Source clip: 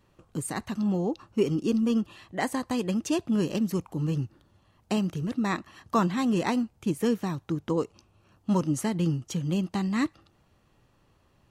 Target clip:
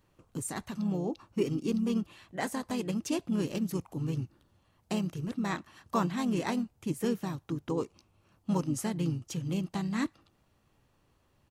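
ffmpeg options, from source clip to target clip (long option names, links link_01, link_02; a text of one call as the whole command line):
ffmpeg -i in.wav -filter_complex "[0:a]crystalizer=i=0.5:c=0,asplit=2[link_01][link_02];[link_02]asetrate=37084,aresample=44100,atempo=1.18921,volume=-8dB[link_03];[link_01][link_03]amix=inputs=2:normalize=0,volume=-5.5dB" out.wav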